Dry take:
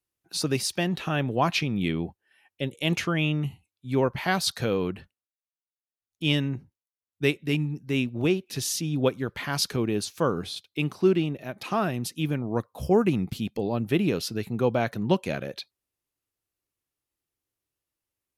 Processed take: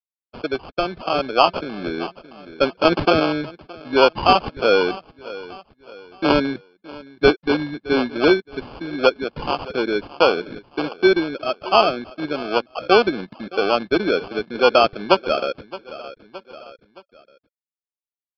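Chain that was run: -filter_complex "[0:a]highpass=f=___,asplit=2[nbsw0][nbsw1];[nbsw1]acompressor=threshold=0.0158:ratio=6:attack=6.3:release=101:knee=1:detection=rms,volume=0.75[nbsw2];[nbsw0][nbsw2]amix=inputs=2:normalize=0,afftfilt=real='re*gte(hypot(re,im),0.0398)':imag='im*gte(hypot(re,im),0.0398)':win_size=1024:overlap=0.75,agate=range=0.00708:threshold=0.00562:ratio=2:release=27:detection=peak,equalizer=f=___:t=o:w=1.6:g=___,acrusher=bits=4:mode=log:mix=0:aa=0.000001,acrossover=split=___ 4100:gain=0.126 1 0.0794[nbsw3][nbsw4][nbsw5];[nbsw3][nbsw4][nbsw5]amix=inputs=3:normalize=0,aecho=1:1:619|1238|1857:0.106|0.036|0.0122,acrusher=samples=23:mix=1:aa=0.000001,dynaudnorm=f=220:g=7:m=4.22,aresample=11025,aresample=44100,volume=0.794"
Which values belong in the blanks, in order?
150, 700, 12, 250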